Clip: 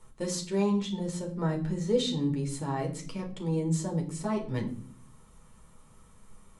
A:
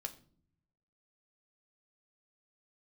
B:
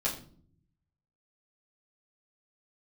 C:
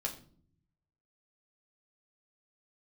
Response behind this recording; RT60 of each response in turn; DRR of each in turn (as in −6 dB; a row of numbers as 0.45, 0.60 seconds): C; non-exponential decay, 0.50 s, 0.50 s; 5.5, −6.5, 0.0 decibels